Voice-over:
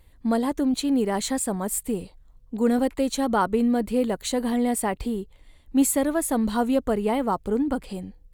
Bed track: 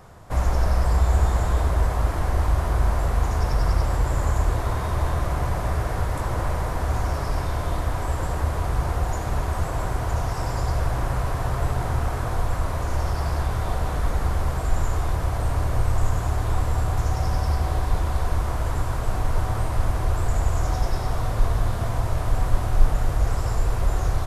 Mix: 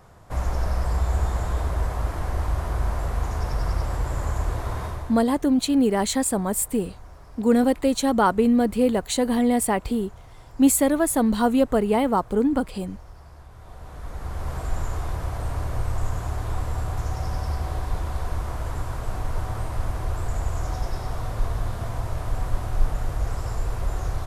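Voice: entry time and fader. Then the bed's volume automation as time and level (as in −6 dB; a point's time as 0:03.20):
4.85 s, +3.0 dB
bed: 0:04.85 −4 dB
0:05.33 −21.5 dB
0:13.49 −21.5 dB
0:14.55 −4.5 dB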